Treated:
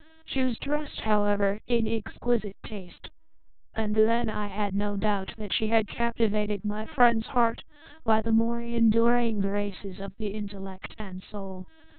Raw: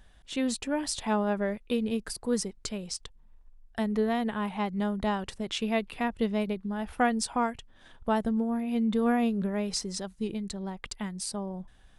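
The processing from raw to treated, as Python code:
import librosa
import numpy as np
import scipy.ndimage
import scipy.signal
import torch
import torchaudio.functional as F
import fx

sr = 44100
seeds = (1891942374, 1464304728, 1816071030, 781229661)

y = fx.lpc_vocoder(x, sr, seeds[0], excitation='pitch_kept', order=8)
y = y * librosa.db_to_amplitude(6.0)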